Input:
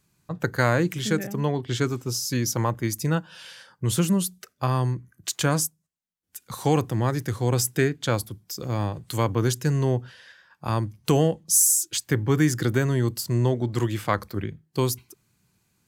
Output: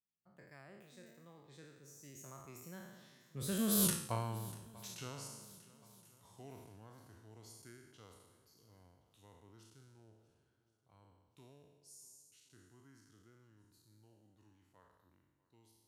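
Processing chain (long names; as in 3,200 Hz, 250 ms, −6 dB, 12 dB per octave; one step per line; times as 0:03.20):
peak hold with a decay on every bin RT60 1.19 s
source passing by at 0:03.86, 43 m/s, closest 2.5 metres
feedback echo with a long and a short gap by turns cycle 1,072 ms, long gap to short 1.5 to 1, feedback 35%, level −20.5 dB
level −1.5 dB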